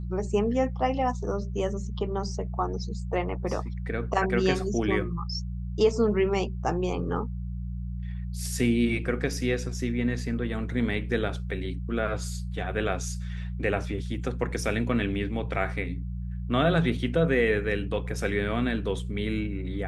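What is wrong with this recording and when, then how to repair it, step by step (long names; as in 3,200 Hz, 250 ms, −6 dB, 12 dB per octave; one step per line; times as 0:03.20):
mains hum 60 Hz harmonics 3 −33 dBFS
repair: hum removal 60 Hz, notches 3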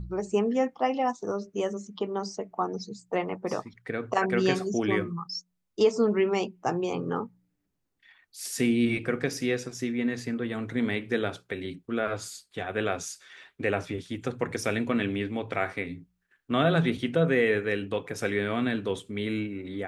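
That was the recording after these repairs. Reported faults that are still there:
none of them is left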